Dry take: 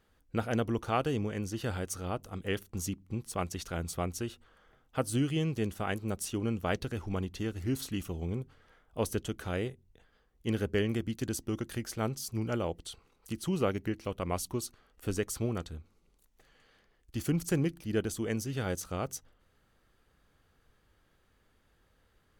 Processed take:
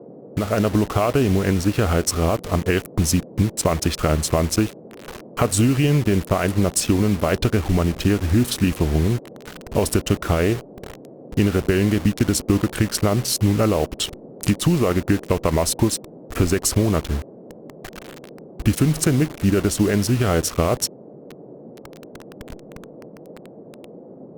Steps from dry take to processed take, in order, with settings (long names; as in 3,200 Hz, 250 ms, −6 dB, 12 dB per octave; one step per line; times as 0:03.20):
adaptive Wiener filter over 9 samples
dynamic equaliser 680 Hz, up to +6 dB, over −54 dBFS, Q 6.3
brickwall limiter −26 dBFS, peak gain reduction 11 dB
automatic gain control gain up to 16.5 dB
transient designer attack +3 dB, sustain −2 dB
downward compressor 2 to 1, threshold −32 dBFS, peak gain reduction 11.5 dB
bit reduction 7 bits
noise in a band 150–620 Hz −50 dBFS
wrong playback speed 48 kHz file played as 44.1 kHz
level +9 dB
Opus 64 kbit/s 48,000 Hz